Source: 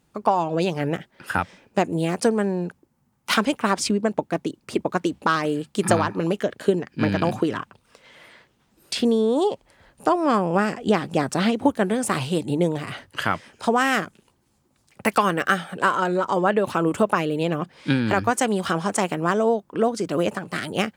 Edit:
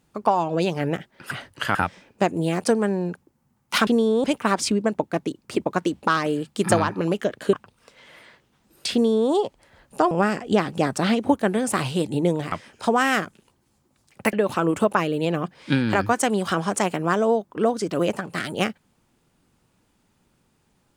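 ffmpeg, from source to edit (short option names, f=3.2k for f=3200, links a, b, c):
-filter_complex "[0:a]asplit=9[a][b][c][d][e][f][g][h][i];[a]atrim=end=1.312[j];[b]atrim=start=12.878:end=13.322[k];[c]atrim=start=1.308:end=3.432[l];[d]atrim=start=8.998:end=9.372[m];[e]atrim=start=3.428:end=6.722[n];[f]atrim=start=7.598:end=10.182[o];[g]atrim=start=10.468:end=12.882[p];[h]atrim=start=13.318:end=15.132[q];[i]atrim=start=16.508[r];[j][k]acrossfade=d=0.004:c1=hsin:c2=hsin[s];[s][l]acrossfade=d=0.004:c1=hsin:c2=hsin[t];[t][m]acrossfade=d=0.004:c1=hsin:c2=hsin[u];[u][n]acrossfade=d=0.004:c1=hsin:c2=hsin[v];[v][o]acrossfade=d=0.004:c1=hsin:c2=hsin[w];[w][p]acrossfade=d=0.004:c1=hsin:c2=hsin[x];[x][q]acrossfade=d=0.004:c1=hsin:c2=hsin[y];[y][r]acrossfade=d=0.004:c1=hsin:c2=hsin"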